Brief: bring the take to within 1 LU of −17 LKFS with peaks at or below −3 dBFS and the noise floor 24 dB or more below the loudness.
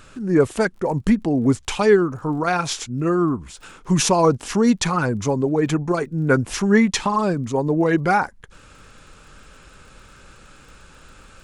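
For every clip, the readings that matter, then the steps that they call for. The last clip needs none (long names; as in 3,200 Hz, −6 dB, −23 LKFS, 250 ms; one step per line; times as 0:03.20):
crackle rate 24 per second; integrated loudness −20.0 LKFS; sample peak −4.0 dBFS; target loudness −17.0 LKFS
→ click removal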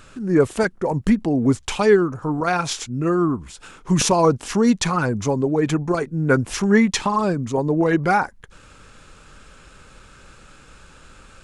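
crackle rate 0.35 per second; integrated loudness −20.0 LKFS; sample peak −4.0 dBFS; target loudness −17.0 LKFS
→ level +3 dB
brickwall limiter −3 dBFS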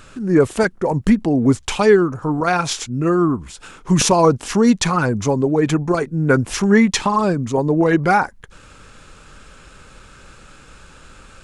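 integrated loudness −17.0 LKFS; sample peak −3.0 dBFS; background noise floor −45 dBFS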